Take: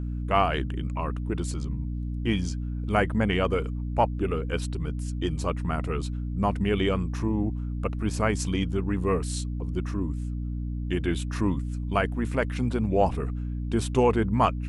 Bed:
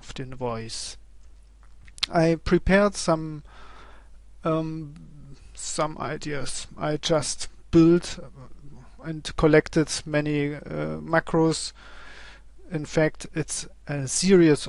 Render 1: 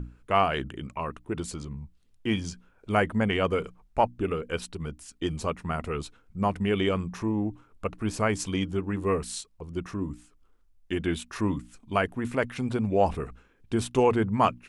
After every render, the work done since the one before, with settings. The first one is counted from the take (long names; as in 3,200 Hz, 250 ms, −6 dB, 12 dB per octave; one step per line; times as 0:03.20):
mains-hum notches 60/120/180/240/300 Hz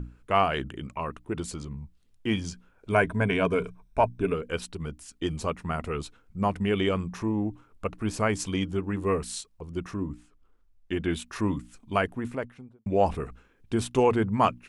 0:02.91–0:04.34: EQ curve with evenly spaced ripples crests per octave 1.6, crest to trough 10 dB
0:10.01–0:11.09: high-shelf EQ 4,100 Hz → 7,300 Hz −10 dB
0:11.99–0:12.86: fade out and dull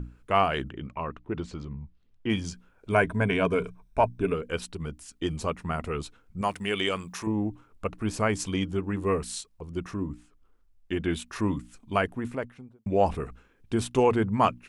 0:00.70–0:02.30: high-frequency loss of the air 170 metres
0:06.41–0:07.27: spectral tilt +3 dB per octave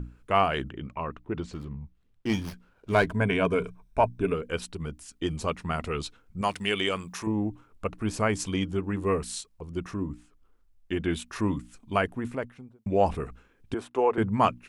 0:01.53–0:03.13: windowed peak hold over 5 samples
0:05.47–0:06.74: dynamic equaliser 4,200 Hz, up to +7 dB, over −50 dBFS, Q 0.85
0:13.74–0:14.18: three-way crossover with the lows and the highs turned down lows −21 dB, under 330 Hz, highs −15 dB, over 2,000 Hz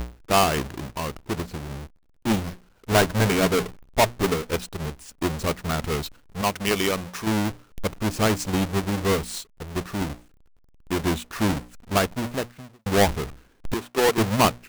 each half-wave held at its own peak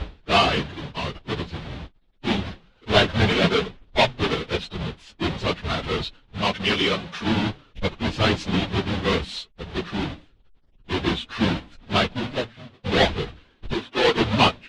random phases in long frames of 50 ms
low-pass with resonance 3,500 Hz, resonance Q 2.5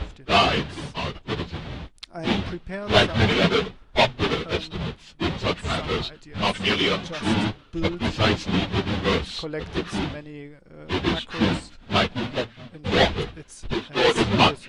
mix in bed −14 dB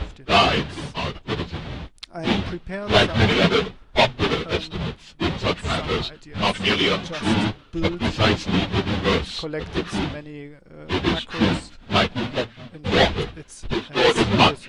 level +2 dB
brickwall limiter −3 dBFS, peak gain reduction 2.5 dB